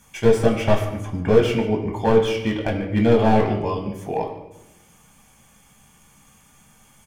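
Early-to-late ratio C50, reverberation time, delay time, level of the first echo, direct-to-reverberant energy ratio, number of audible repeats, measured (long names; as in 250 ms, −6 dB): 7.5 dB, 0.95 s, 146 ms, −16.0 dB, 2.0 dB, 1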